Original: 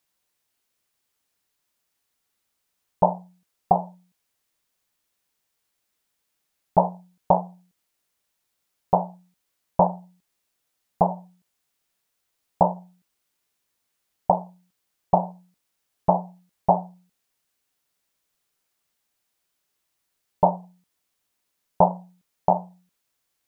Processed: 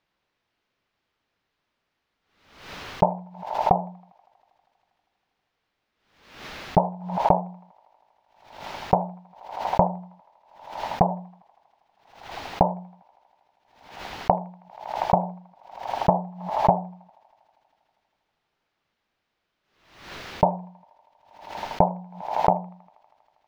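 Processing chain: compressor 6:1, threshold -22 dBFS, peak gain reduction 11.5 dB; air absorption 260 m; thin delay 80 ms, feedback 82%, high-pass 1400 Hz, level -21.5 dB; backwards sustainer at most 79 dB/s; gain +7.5 dB

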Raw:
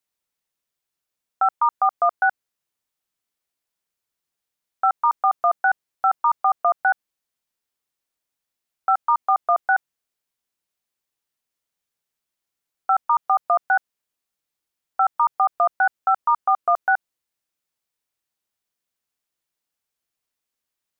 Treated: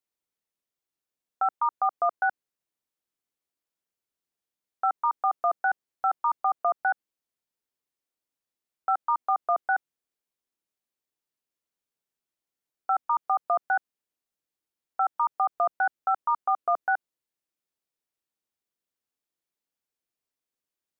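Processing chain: bell 330 Hz +6 dB 1.8 oct; gain -7.5 dB

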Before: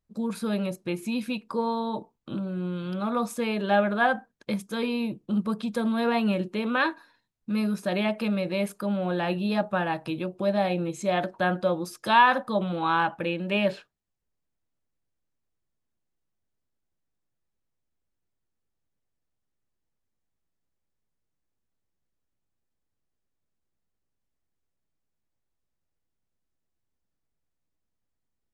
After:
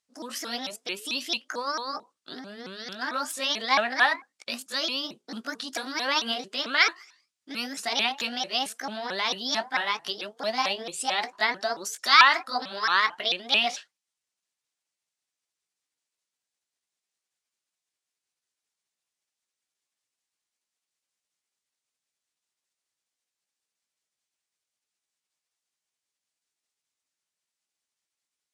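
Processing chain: repeated pitch sweeps +6 st, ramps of 0.222 s; weighting filter ITU-R 468

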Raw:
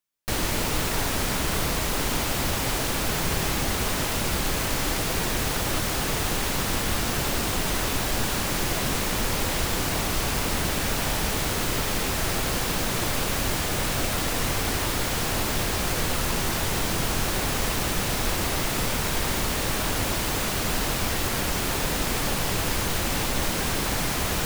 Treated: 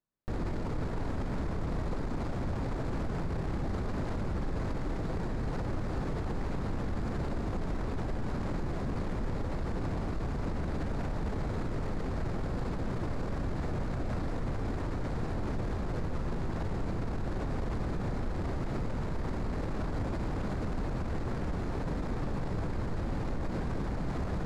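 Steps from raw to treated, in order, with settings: median filter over 15 samples; LPF 7500 Hz 12 dB/oct; low shelf 460 Hz +10 dB; limiter -21.5 dBFS, peak gain reduction 14.5 dB; gain -4.5 dB

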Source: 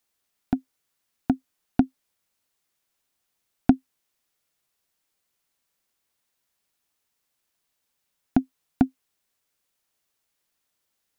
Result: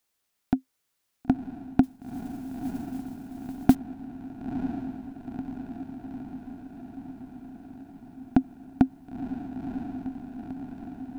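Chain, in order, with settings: diffused feedback echo 0.976 s, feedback 69%, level -7 dB; 1.83–3.75 modulation noise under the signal 24 dB

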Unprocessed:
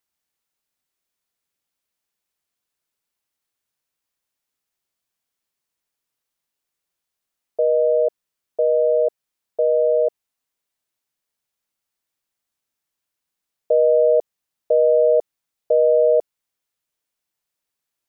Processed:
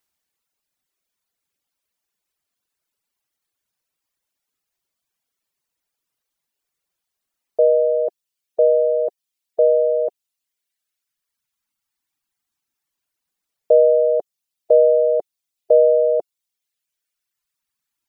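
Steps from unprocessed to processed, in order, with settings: reverb removal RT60 2 s; gain +4.5 dB

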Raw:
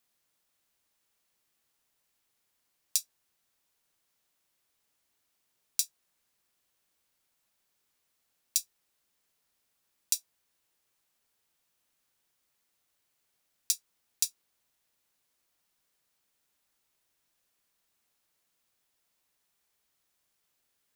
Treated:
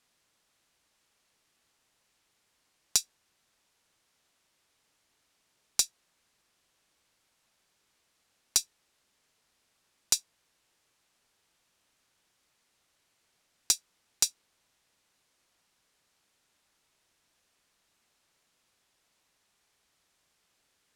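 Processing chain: Bessel low-pass 7700 Hz, order 2; one-sided clip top -21 dBFS; gain +7.5 dB

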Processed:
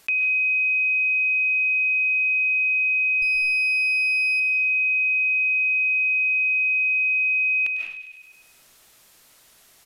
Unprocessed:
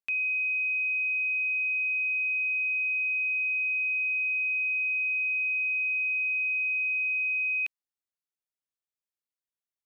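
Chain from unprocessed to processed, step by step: 3.22–4.4 minimum comb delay 0.42 ms; thin delay 0.101 s, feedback 41%, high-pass 2400 Hz, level -13 dB; on a send at -5 dB: reverb RT60 0.40 s, pre-delay 0.105 s; on the sum: downsampling 32000 Hz; fast leveller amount 50%; gain +5.5 dB

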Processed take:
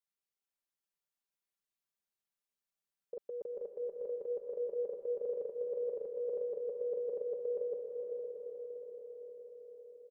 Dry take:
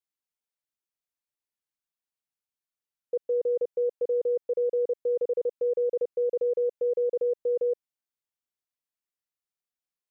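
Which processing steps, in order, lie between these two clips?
comb 5.1 ms, depth 74%; limiter -27 dBFS, peak gain reduction 5 dB; on a send: diffused feedback echo 0.474 s, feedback 63%, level -4 dB; on the sum: gain -5.5 dB

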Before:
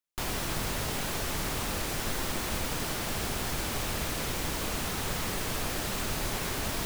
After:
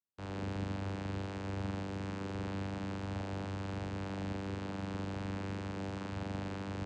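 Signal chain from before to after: median filter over 5 samples; flutter echo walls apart 7.1 m, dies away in 1.1 s; vocoder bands 8, saw 97.2 Hz; gain -6.5 dB

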